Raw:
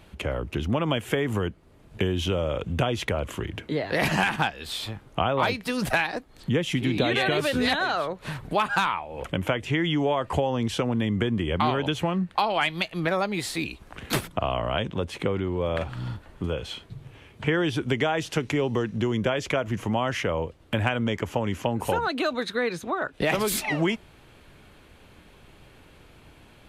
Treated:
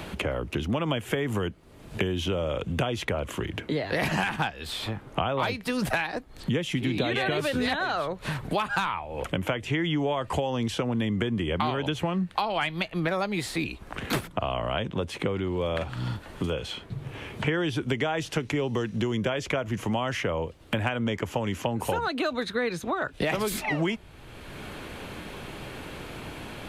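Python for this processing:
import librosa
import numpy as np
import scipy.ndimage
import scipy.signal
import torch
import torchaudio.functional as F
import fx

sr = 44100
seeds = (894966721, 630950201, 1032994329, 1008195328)

y = fx.band_squash(x, sr, depth_pct=70)
y = y * 10.0 ** (-2.5 / 20.0)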